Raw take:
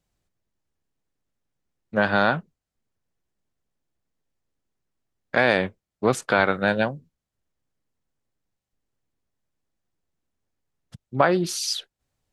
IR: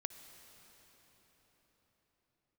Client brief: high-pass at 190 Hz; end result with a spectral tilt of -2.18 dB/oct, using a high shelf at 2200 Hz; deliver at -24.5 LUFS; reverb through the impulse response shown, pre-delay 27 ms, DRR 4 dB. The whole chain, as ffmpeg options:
-filter_complex "[0:a]highpass=190,highshelf=f=2.2k:g=8,asplit=2[a][b];[1:a]atrim=start_sample=2205,adelay=27[c];[b][c]afir=irnorm=-1:irlink=0,volume=-2dB[d];[a][d]amix=inputs=2:normalize=0,volume=-4.5dB"

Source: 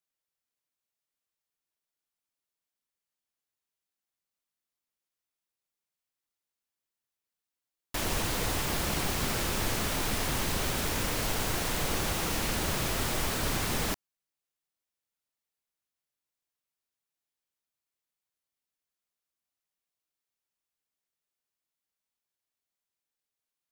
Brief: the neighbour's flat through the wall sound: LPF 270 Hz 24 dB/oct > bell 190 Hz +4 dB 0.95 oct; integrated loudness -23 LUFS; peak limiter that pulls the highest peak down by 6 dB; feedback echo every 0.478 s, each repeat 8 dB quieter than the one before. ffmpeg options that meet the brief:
-af "alimiter=limit=-23dB:level=0:latency=1,lowpass=f=270:w=0.5412,lowpass=f=270:w=1.3066,equalizer=f=190:t=o:w=0.95:g=4,aecho=1:1:478|956|1434|1912|2390:0.398|0.159|0.0637|0.0255|0.0102,volume=15.5dB"

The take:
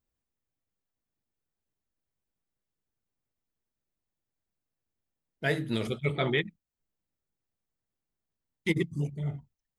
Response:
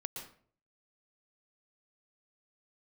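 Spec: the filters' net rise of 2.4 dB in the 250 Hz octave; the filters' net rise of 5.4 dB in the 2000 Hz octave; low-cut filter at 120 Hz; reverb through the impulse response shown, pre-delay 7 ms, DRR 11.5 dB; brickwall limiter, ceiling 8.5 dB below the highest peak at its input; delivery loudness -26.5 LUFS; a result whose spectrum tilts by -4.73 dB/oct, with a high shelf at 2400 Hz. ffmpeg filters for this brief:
-filter_complex "[0:a]highpass=120,equalizer=f=250:t=o:g=4,equalizer=f=2k:t=o:g=3.5,highshelf=f=2.4k:g=5.5,alimiter=limit=-18dB:level=0:latency=1,asplit=2[a][b];[1:a]atrim=start_sample=2205,adelay=7[c];[b][c]afir=irnorm=-1:irlink=0,volume=-10.5dB[d];[a][d]amix=inputs=2:normalize=0,volume=4.5dB"

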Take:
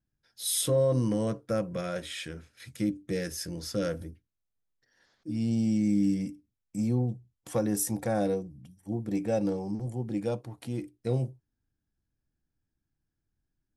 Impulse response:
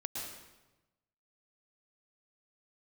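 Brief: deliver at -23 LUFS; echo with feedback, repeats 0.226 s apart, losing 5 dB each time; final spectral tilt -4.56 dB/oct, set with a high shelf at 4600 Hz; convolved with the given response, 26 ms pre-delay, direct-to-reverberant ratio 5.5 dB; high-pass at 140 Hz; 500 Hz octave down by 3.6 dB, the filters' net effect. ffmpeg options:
-filter_complex "[0:a]highpass=140,equalizer=f=500:t=o:g=-4,highshelf=f=4.6k:g=4,aecho=1:1:226|452|678|904|1130|1356|1582:0.562|0.315|0.176|0.0988|0.0553|0.031|0.0173,asplit=2[a][b];[1:a]atrim=start_sample=2205,adelay=26[c];[b][c]afir=irnorm=-1:irlink=0,volume=-6.5dB[d];[a][d]amix=inputs=2:normalize=0,volume=6.5dB"

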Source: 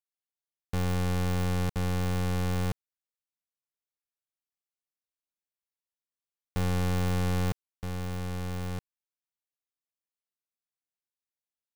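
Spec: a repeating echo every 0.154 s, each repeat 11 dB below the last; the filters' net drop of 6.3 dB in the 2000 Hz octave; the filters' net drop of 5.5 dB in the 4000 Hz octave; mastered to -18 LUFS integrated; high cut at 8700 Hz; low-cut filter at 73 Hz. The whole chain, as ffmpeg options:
-af "highpass=73,lowpass=8.7k,equalizer=f=2k:t=o:g=-7.5,equalizer=f=4k:t=o:g=-4.5,aecho=1:1:154|308|462:0.282|0.0789|0.0221,volume=14dB"

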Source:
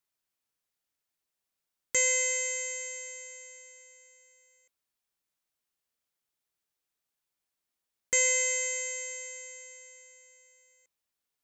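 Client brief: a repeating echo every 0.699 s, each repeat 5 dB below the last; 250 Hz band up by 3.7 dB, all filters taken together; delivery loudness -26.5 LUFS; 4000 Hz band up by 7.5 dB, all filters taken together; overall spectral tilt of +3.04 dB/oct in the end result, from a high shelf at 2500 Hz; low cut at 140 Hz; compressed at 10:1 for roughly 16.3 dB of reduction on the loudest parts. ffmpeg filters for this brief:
-af "highpass=140,equalizer=f=250:t=o:g=5.5,highshelf=f=2.5k:g=6,equalizer=f=4k:t=o:g=5,acompressor=threshold=-33dB:ratio=10,aecho=1:1:699|1398|2097|2796|3495|4194|4893:0.562|0.315|0.176|0.0988|0.0553|0.031|0.0173,volume=10dB"

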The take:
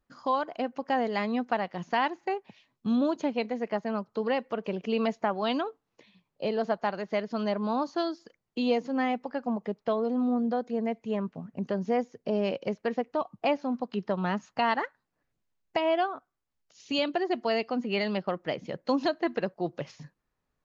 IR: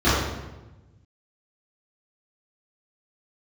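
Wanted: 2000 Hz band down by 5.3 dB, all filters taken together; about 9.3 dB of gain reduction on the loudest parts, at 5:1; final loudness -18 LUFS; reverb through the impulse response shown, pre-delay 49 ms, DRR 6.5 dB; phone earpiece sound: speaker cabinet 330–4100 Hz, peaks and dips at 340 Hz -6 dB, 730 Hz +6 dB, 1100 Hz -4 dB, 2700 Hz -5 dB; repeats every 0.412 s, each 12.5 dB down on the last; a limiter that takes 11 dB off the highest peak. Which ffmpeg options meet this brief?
-filter_complex "[0:a]equalizer=f=2k:t=o:g=-5,acompressor=threshold=-33dB:ratio=5,alimiter=level_in=7.5dB:limit=-24dB:level=0:latency=1,volume=-7.5dB,aecho=1:1:412|824|1236:0.237|0.0569|0.0137,asplit=2[a][b];[1:a]atrim=start_sample=2205,adelay=49[c];[b][c]afir=irnorm=-1:irlink=0,volume=-28dB[d];[a][d]amix=inputs=2:normalize=0,highpass=330,equalizer=f=340:t=q:w=4:g=-6,equalizer=f=730:t=q:w=4:g=6,equalizer=f=1.1k:t=q:w=4:g=-4,equalizer=f=2.7k:t=q:w=4:g=-5,lowpass=f=4.1k:w=0.5412,lowpass=f=4.1k:w=1.3066,volume=24dB"

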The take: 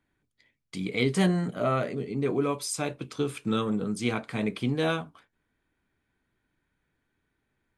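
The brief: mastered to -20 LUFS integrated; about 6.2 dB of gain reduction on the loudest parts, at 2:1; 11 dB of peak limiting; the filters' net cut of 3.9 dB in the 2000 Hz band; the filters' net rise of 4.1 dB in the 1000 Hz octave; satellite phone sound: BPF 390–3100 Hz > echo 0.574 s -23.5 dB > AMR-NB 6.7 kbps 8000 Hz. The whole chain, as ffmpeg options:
-af "equalizer=f=1k:t=o:g=8.5,equalizer=f=2k:t=o:g=-7.5,acompressor=threshold=-31dB:ratio=2,alimiter=level_in=4.5dB:limit=-24dB:level=0:latency=1,volume=-4.5dB,highpass=390,lowpass=3.1k,aecho=1:1:574:0.0668,volume=23.5dB" -ar 8000 -c:a libopencore_amrnb -b:a 6700

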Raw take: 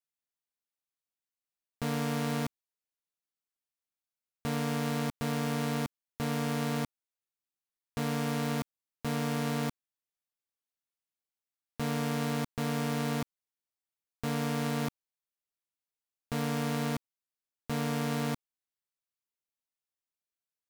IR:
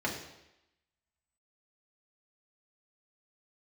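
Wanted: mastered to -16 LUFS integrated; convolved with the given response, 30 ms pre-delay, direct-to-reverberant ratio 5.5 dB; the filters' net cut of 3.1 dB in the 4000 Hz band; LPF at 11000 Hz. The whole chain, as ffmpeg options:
-filter_complex "[0:a]lowpass=11k,equalizer=f=4k:t=o:g=-4,asplit=2[a][b];[1:a]atrim=start_sample=2205,adelay=30[c];[b][c]afir=irnorm=-1:irlink=0,volume=-13dB[d];[a][d]amix=inputs=2:normalize=0,volume=17.5dB"

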